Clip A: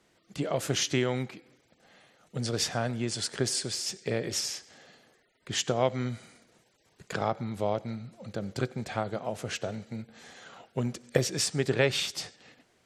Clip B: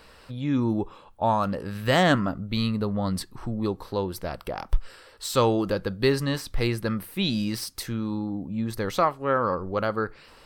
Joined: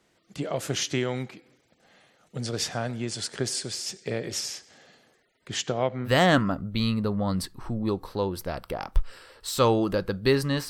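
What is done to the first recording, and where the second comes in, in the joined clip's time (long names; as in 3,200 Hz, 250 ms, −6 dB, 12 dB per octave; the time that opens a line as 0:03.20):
clip A
0:05.57–0:06.10: low-pass filter 10,000 Hz → 1,100 Hz
0:06.07: continue with clip B from 0:01.84, crossfade 0.06 s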